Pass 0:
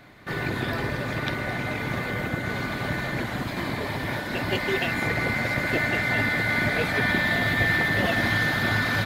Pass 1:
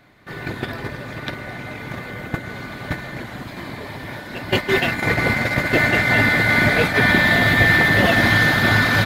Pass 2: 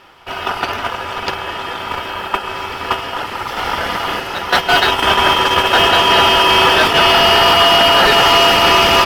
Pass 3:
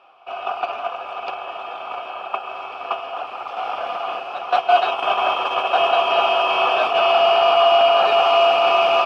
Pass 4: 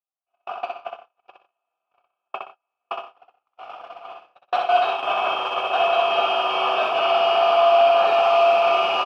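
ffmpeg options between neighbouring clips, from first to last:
-af "agate=range=0.282:threshold=0.0562:ratio=16:detection=peak,volume=2.51"
-af "aeval=exprs='val(0)*sin(2*PI*1100*n/s)':c=same,apsyclip=5.01,dynaudnorm=f=340:g=3:m=3.76,volume=0.75"
-filter_complex "[0:a]asplit=3[s0][s1][s2];[s0]bandpass=f=730:t=q:w=8,volume=1[s3];[s1]bandpass=f=1090:t=q:w=8,volume=0.501[s4];[s2]bandpass=f=2440:t=q:w=8,volume=0.355[s5];[s3][s4][s5]amix=inputs=3:normalize=0,volume=1.58"
-filter_complex "[0:a]agate=range=0.00398:threshold=0.0708:ratio=16:detection=peak,asplit=2[s0][s1];[s1]aecho=0:1:63|123|153:0.631|0.178|0.126[s2];[s0][s2]amix=inputs=2:normalize=0,volume=0.596"

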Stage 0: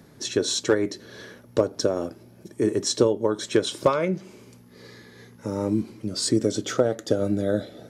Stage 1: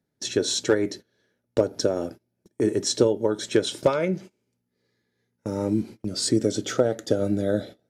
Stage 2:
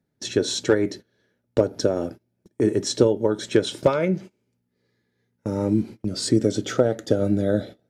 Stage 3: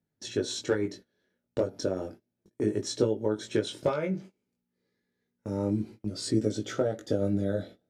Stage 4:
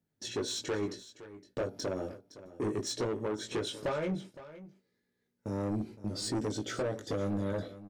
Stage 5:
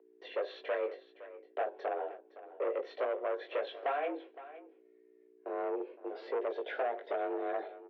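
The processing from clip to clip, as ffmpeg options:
-af "bandreject=f=1100:w=5.1,agate=range=0.0447:threshold=0.0141:ratio=16:detection=peak"
-af "bass=f=250:g=3,treble=f=4000:g=-4,volume=1.19"
-af "flanger=delay=18.5:depth=3.1:speed=0.31,volume=0.562"
-af "asoftclip=type=tanh:threshold=0.0398,aecho=1:1:514:0.158"
-af "aeval=exprs='val(0)+0.00316*(sin(2*PI*60*n/s)+sin(2*PI*2*60*n/s)/2+sin(2*PI*3*60*n/s)/3+sin(2*PI*4*60*n/s)/4+sin(2*PI*5*60*n/s)/5)':c=same,highpass=f=230:t=q:w=0.5412,highpass=f=230:t=q:w=1.307,lowpass=f=2900:t=q:w=0.5176,lowpass=f=2900:t=q:w=0.7071,lowpass=f=2900:t=q:w=1.932,afreqshift=140"

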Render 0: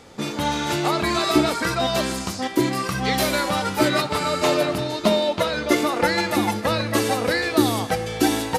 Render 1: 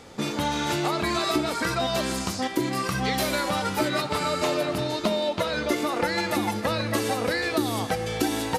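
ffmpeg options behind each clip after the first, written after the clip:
-af "acompressor=threshold=0.0708:ratio=3"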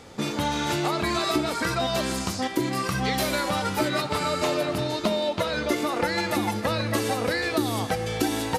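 -af "equalizer=f=94:w=1.5:g=2.5"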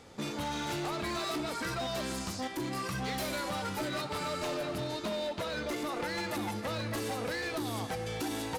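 -af "asoftclip=type=hard:threshold=0.0668,volume=0.422"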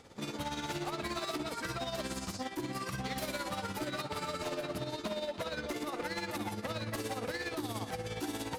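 -af "tremolo=f=17:d=0.59"

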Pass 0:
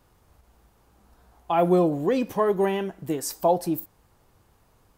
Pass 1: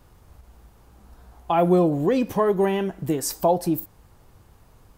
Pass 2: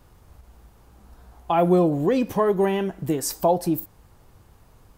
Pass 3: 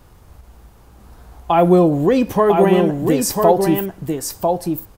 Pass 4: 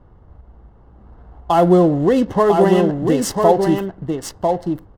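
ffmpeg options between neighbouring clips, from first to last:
-filter_complex "[0:a]lowshelf=f=160:g=6.5,asplit=2[s0][s1];[s1]acompressor=threshold=0.0447:ratio=6,volume=1.12[s2];[s0][s2]amix=inputs=2:normalize=0,volume=0.794"
-af anull
-af "aecho=1:1:997:0.596,volume=2"
-af "adynamicsmooth=sensitivity=5.5:basefreq=1100,asuperstop=centerf=2400:order=12:qfactor=7.2"

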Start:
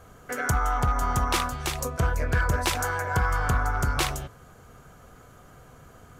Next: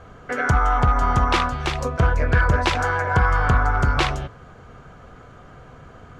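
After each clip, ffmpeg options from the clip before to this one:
-af "lowpass=3700,volume=2.11"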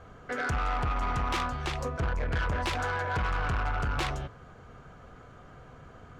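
-af "asoftclip=type=tanh:threshold=0.106,volume=0.501"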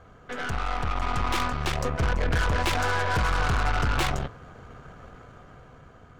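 -af "dynaudnorm=f=280:g=9:m=2,aeval=exprs='0.106*(cos(1*acos(clip(val(0)/0.106,-1,1)))-cos(1*PI/2))+0.0266*(cos(4*acos(clip(val(0)/0.106,-1,1)))-cos(4*PI/2))':c=same,volume=0.841"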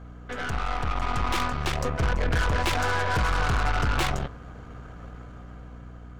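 -af "aeval=exprs='val(0)+0.00794*(sin(2*PI*60*n/s)+sin(2*PI*2*60*n/s)/2+sin(2*PI*3*60*n/s)/3+sin(2*PI*4*60*n/s)/4+sin(2*PI*5*60*n/s)/5)':c=same"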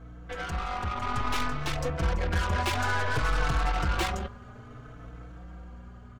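-filter_complex "[0:a]asplit=2[s0][s1];[s1]adelay=4.1,afreqshift=0.59[s2];[s0][s2]amix=inputs=2:normalize=1"

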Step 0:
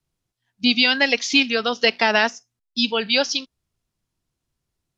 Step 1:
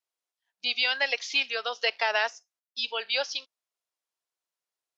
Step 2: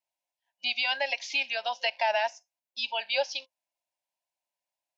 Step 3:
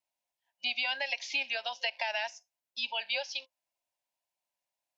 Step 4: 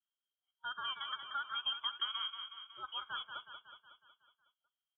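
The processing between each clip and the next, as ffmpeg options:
-filter_complex "[0:a]highpass=f=500:w=0.5412,highpass=f=500:w=1.3066,acrossover=split=5600[s0][s1];[s1]acompressor=threshold=0.0112:ratio=4:attack=1:release=60[s2];[s0][s2]amix=inputs=2:normalize=0,volume=0.422"
-af "superequalizer=7b=0.282:8b=2.51:9b=2.51:10b=0.316:12b=1.58,alimiter=limit=0.2:level=0:latency=1:release=101,volume=0.75"
-filter_complex "[0:a]acrossover=split=480|1600|3900[s0][s1][s2][s3];[s0]acompressor=threshold=0.00282:ratio=4[s4];[s1]acompressor=threshold=0.01:ratio=4[s5];[s2]acompressor=threshold=0.0282:ratio=4[s6];[s3]acompressor=threshold=0.00708:ratio=4[s7];[s4][s5][s6][s7]amix=inputs=4:normalize=0"
-filter_complex "[0:a]asplit=3[s0][s1][s2];[s0]bandpass=f=730:t=q:w=8,volume=1[s3];[s1]bandpass=f=1090:t=q:w=8,volume=0.501[s4];[s2]bandpass=f=2440:t=q:w=8,volume=0.355[s5];[s3][s4][s5]amix=inputs=3:normalize=0,asplit=2[s6][s7];[s7]aecho=0:1:184|368|552|736|920|1104|1288:0.422|0.245|0.142|0.0823|0.0477|0.0277|0.0161[s8];[s6][s8]amix=inputs=2:normalize=0,lowpass=f=3300:t=q:w=0.5098,lowpass=f=3300:t=q:w=0.6013,lowpass=f=3300:t=q:w=0.9,lowpass=f=3300:t=q:w=2.563,afreqshift=-3900,volume=1.41"

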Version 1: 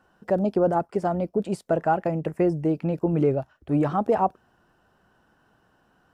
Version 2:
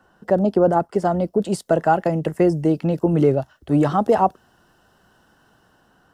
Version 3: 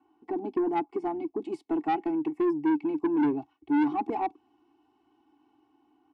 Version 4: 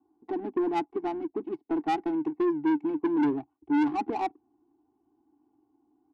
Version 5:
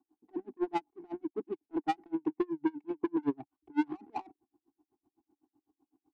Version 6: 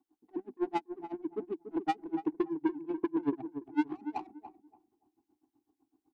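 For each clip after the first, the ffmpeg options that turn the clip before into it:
-filter_complex "[0:a]bandreject=f=2400:w=6.8,acrossover=split=190|2800[s0][s1][s2];[s2]dynaudnorm=f=470:g=5:m=2.37[s3];[s0][s1][s3]amix=inputs=3:normalize=0,volume=1.78"
-filter_complex "[0:a]asplit=3[s0][s1][s2];[s0]bandpass=f=300:t=q:w=8,volume=1[s3];[s1]bandpass=f=870:t=q:w=8,volume=0.501[s4];[s2]bandpass=f=2240:t=q:w=8,volume=0.355[s5];[s3][s4][s5]amix=inputs=3:normalize=0,aecho=1:1:2.7:0.9,acrossover=split=5200[s6][s7];[s6]asoftclip=type=tanh:threshold=0.075[s8];[s8][s7]amix=inputs=2:normalize=0,volume=1.19"
-af "adynamicsmooth=sensitivity=5:basefreq=670"
-af "aeval=exprs='val(0)*pow(10,-35*(0.5-0.5*cos(2*PI*7.9*n/s))/20)':c=same"
-filter_complex "[0:a]asplit=2[s0][s1];[s1]adelay=287,lowpass=f=850:p=1,volume=0.355,asplit=2[s2][s3];[s3]adelay=287,lowpass=f=850:p=1,volume=0.27,asplit=2[s4][s5];[s5]adelay=287,lowpass=f=850:p=1,volume=0.27[s6];[s0][s2][s4][s6]amix=inputs=4:normalize=0"

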